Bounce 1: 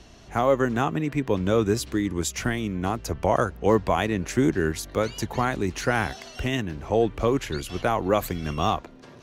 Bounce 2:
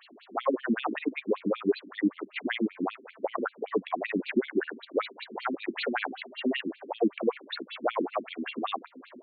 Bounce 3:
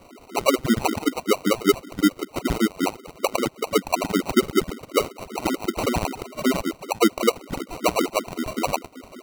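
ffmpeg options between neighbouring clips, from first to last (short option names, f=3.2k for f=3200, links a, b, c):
-af "alimiter=limit=-16.5dB:level=0:latency=1:release=16,afftfilt=real='re*between(b*sr/1024,250*pow(3300/250,0.5+0.5*sin(2*PI*5.2*pts/sr))/1.41,250*pow(3300/250,0.5+0.5*sin(2*PI*5.2*pts/sr))*1.41)':imag='im*between(b*sr/1024,250*pow(3300/250,0.5+0.5*sin(2*PI*5.2*pts/sr))/1.41,250*pow(3300/250,0.5+0.5*sin(2*PI*5.2*pts/sr))*1.41)':win_size=1024:overlap=0.75,volume=5.5dB"
-af "acrusher=samples=26:mix=1:aa=0.000001,volume=7.5dB"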